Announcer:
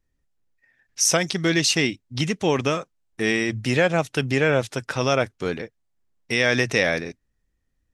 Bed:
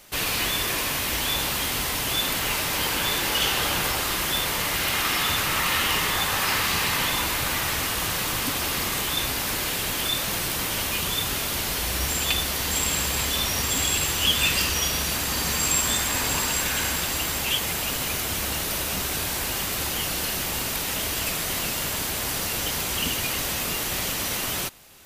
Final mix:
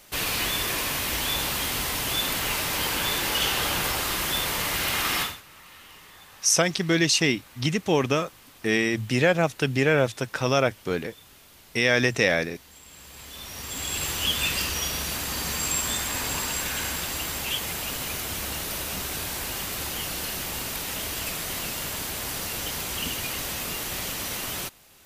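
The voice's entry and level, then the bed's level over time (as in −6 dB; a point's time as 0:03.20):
5.45 s, −1.0 dB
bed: 0:05.22 −1.5 dB
0:05.42 −25 dB
0:12.82 −25 dB
0:14.06 −4 dB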